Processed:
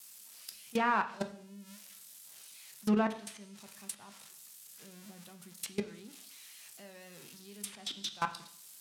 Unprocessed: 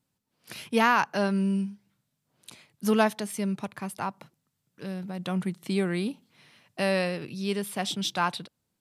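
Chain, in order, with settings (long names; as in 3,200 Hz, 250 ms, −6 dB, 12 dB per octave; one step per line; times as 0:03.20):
spike at every zero crossing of −17 dBFS
output level in coarse steps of 23 dB
pitch vibrato 4 Hz 55 cents
convolution reverb RT60 0.60 s, pre-delay 4 ms, DRR 7 dB
treble cut that deepens with the level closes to 2,200 Hz, closed at −20 dBFS
level −5.5 dB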